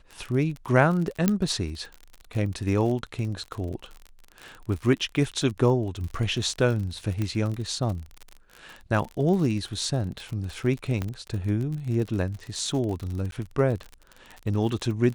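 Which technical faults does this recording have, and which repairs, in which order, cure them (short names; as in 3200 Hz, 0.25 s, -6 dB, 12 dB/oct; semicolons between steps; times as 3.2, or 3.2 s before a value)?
crackle 43/s -31 dBFS
1.28 pop -7 dBFS
7.22 pop -16 dBFS
11.02 pop -16 dBFS
13.31–13.32 gap 12 ms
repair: de-click; interpolate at 13.31, 12 ms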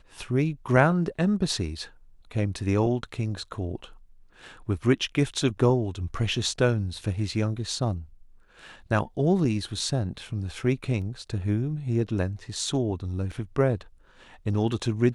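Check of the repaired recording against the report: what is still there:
11.02 pop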